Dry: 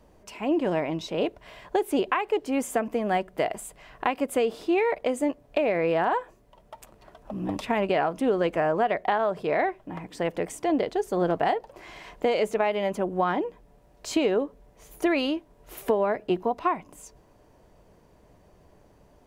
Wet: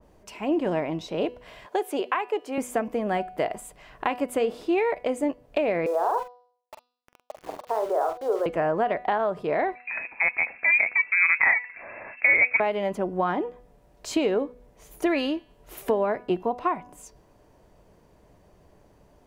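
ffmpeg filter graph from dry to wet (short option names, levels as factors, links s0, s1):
-filter_complex "[0:a]asettb=1/sr,asplit=3[s0][s1][s2];[s0]atrim=end=1.664[s3];[s1]atrim=start=1.66:end=2.58,asetpts=PTS-STARTPTS,afade=t=in:d=0.004:c=qsin,afade=t=out:st=0.916:d=0.004:c=qsin,highpass=370,acompressor=mode=upward:threshold=0.00501:ratio=2.5:attack=3.2:release=140:knee=2.83:detection=peak[s4];[s2]atrim=start=2.576[s5];[s3][s4]acrossfade=d=0.004:c1=hsin:c2=qsin[s6];[s6][s5]acrossfade=d=0.004:c1=qsin:c2=hsin,asettb=1/sr,asplit=3[s7][s8][s9];[s7]atrim=end=5.864[s10];[s8]atrim=start=5.86:end=8.46,asetpts=PTS-STARTPTS,afade=t=in:d=0.004:c=qsin,afade=t=out:st=2.596:d=0.004:c=qsin,asuperpass=centerf=720:order=8:qfactor=0.76,aeval=exprs='val(0)*gte(abs(val(0)),0.0112)':c=same,asplit=2[s11][s12];[s12]adelay=45,volume=0.422[s13];[s11][s13]amix=inputs=2:normalize=0,atrim=end_sample=114660[s14];[s9]atrim=start=8.456[s15];[s10][s14]acrossfade=d=0.004:c1=hsin:c2=qsin[s16];[s16][s15]acrossfade=d=0.004:c1=qsin:c2=hsin,asettb=1/sr,asplit=3[s17][s18][s19];[s17]atrim=end=9.754[s20];[s18]atrim=start=9.75:end=12.6,asetpts=PTS-STARTPTS,afade=t=in:d=0.004:c=qsin,afade=t=out:st=2.846:d=0.004:c=qsin,acontrast=52,lowpass=f=2300:t=q:w=0.5098,lowpass=f=2300:t=q:w=0.6013,lowpass=f=2300:t=q:w=0.9,lowpass=f=2300:t=q:w=2.563,afreqshift=-2700[s21];[s19]atrim=start=12.596[s22];[s20][s21]acrossfade=d=0.004:c1=hsin:c2=qsin[s23];[s23][s22]acrossfade=d=0.004:c1=qsin:c2=hsin,bandreject=f=245.8:t=h:w=4,bandreject=f=491.6:t=h:w=4,bandreject=f=737.4:t=h:w=4,bandreject=f=983.2:t=h:w=4,bandreject=f=1229:t=h:w=4,bandreject=f=1474.8:t=h:w=4,bandreject=f=1720.6:t=h:w=4,bandreject=f=1966.4:t=h:w=4,bandreject=f=2212.2:t=h:w=4,bandreject=f=2458:t=h:w=4,bandreject=f=2703.8:t=h:w=4,bandreject=f=2949.6:t=h:w=4,bandreject=f=3195.4:t=h:w=4,bandreject=f=3441.2:t=h:w=4,bandreject=f=3687:t=h:w=4,bandreject=f=3932.8:t=h:w=4,bandreject=f=4178.6:t=h:w=4,bandreject=f=4424.4:t=h:w=4,bandreject=f=4670.2:t=h:w=4,bandreject=f=4916:t=h:w=4,bandreject=f=5161.8:t=h:w=4,bandreject=f=5407.6:t=h:w=4,bandreject=f=5653.4:t=h:w=4,bandreject=f=5899.2:t=h:w=4,adynamicequalizer=threshold=0.00794:dfrequency=2000:dqfactor=0.7:tfrequency=2000:tqfactor=0.7:attack=5:release=100:ratio=0.375:range=2:mode=cutabove:tftype=highshelf"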